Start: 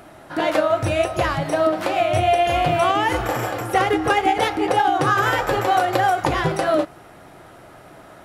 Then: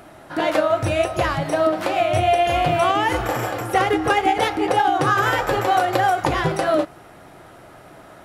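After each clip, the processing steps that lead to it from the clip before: no audible change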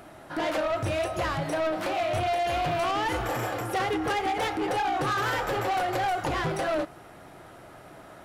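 saturation -20 dBFS, distortion -10 dB; trim -3.5 dB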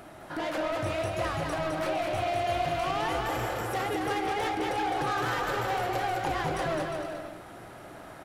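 compression 1.5:1, threshold -38 dBFS, peak gain reduction 4.5 dB; on a send: bouncing-ball echo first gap 210 ms, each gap 0.7×, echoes 5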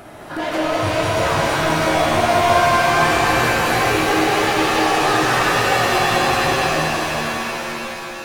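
fade out at the end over 2.30 s; pitch-shifted reverb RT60 3.4 s, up +7 st, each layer -2 dB, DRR -1 dB; trim +7.5 dB

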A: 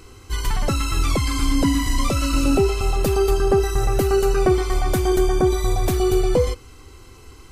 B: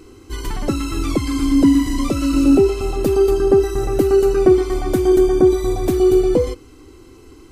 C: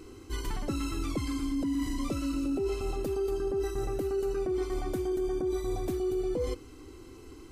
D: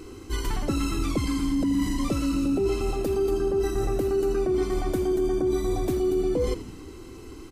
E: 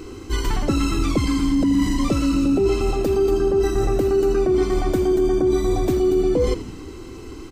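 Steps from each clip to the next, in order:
peaking EQ 310 Hz +13.5 dB 0.99 oct; trim -3.5 dB
peak limiter -9 dBFS, peak gain reduction 7.5 dB; reverse; compression 5:1, threshold -24 dBFS, peak gain reduction 10.5 dB; reverse; trim -5 dB
frequency-shifting echo 82 ms, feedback 55%, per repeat -82 Hz, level -14 dB; trim +6 dB
peaking EQ 11 kHz -11.5 dB 0.36 oct; trim +6 dB

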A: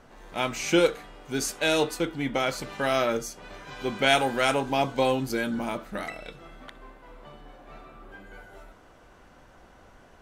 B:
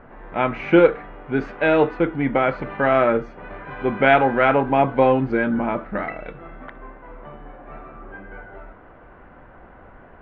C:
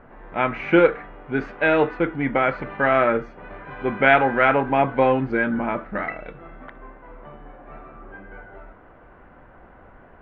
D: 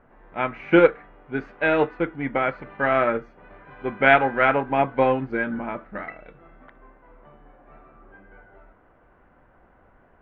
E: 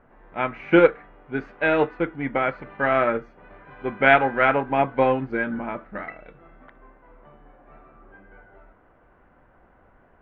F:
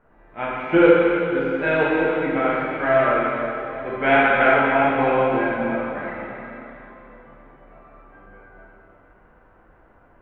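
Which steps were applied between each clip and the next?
low-pass 2.1 kHz 24 dB/octave; trim +8 dB
dynamic bell 1.8 kHz, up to +5 dB, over -34 dBFS, Q 1.1; trim -2.5 dB
upward expansion 1.5:1, over -30 dBFS; trim +1 dB
no audible change
plate-style reverb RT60 3.1 s, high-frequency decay 0.95×, DRR -7.5 dB; trim -5.5 dB

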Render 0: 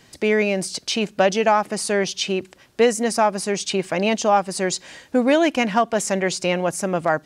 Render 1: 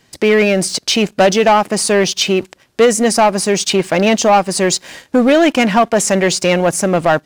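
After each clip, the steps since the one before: waveshaping leveller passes 2; trim +2 dB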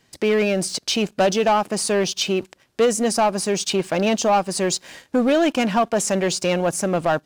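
dynamic bell 2 kHz, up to -6 dB, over -34 dBFS, Q 4.3; trim -7 dB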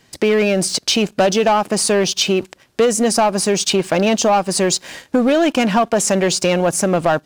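compression 2.5:1, threshold -20 dBFS, peak gain reduction 4.5 dB; trim +7 dB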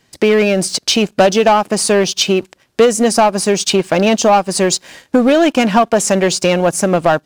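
upward expansion 1.5:1, over -27 dBFS; trim +5 dB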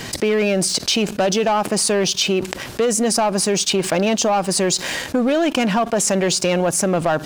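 level flattener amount 70%; trim -9.5 dB

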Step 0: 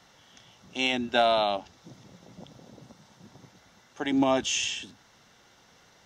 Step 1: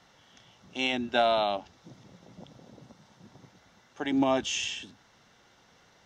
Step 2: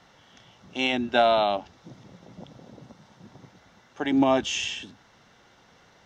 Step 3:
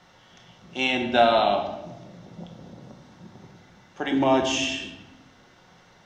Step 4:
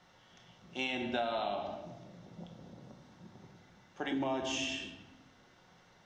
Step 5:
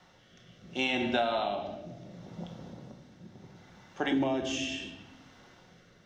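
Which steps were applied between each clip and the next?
treble shelf 6.9 kHz -7.5 dB; trim -1.5 dB
treble shelf 4.5 kHz -5.5 dB; trim +4.5 dB
simulated room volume 480 m³, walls mixed, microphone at 1 m
compression 6:1, threshold -23 dBFS, peak gain reduction 10 dB; trim -8 dB
rotary cabinet horn 0.7 Hz; trim +7 dB

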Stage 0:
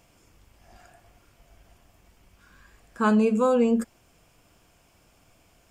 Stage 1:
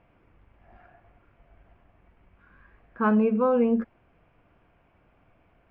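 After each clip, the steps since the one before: low-pass 2.3 kHz 24 dB/octave; trim -1 dB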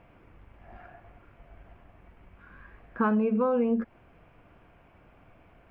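compression 6:1, threshold -28 dBFS, peak gain reduction 10 dB; trim +5.5 dB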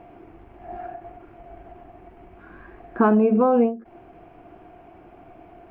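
small resonant body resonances 350/700 Hz, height 16 dB, ringing for 35 ms; endings held to a fixed fall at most 160 dB/s; trim +3 dB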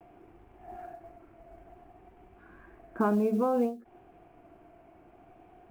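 modulation noise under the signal 33 dB; vibrato 0.58 Hz 49 cents; trim -9 dB

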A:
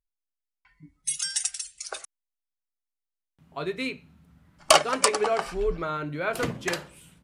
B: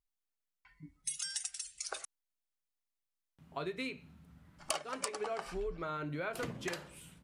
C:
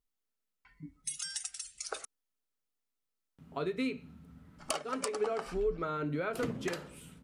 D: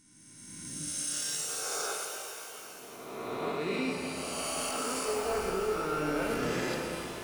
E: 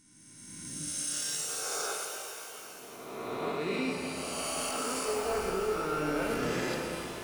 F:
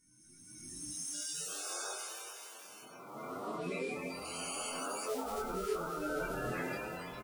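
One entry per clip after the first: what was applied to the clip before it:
compression 5:1, threshold -34 dBFS, peak gain reduction 19.5 dB; trim -2 dB
bass shelf 490 Hz +3 dB; small resonant body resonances 250/440/1300 Hz, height 7 dB, ringing for 35 ms
reverse spectral sustain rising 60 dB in 1.95 s; peak limiter -25.5 dBFS, peak gain reduction 11 dB; pitch-shifted reverb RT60 3.5 s, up +12 st, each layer -8 dB, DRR 0.5 dB; trim -1 dB
no audible change
coarse spectral quantiser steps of 30 dB; doubling 23 ms -2 dB; endless flanger 8.5 ms +2.7 Hz; trim -4.5 dB

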